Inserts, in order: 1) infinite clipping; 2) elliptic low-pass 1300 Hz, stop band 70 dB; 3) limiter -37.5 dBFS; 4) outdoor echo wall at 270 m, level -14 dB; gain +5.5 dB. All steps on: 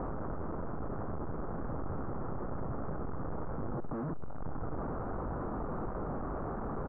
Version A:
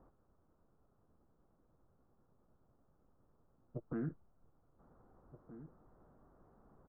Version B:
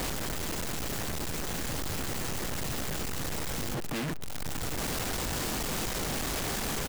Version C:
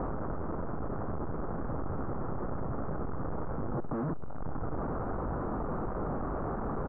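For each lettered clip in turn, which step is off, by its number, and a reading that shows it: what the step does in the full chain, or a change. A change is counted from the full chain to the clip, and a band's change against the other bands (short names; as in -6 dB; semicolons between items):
1, crest factor change +15.5 dB; 2, 2 kHz band +13.5 dB; 3, mean gain reduction 2.5 dB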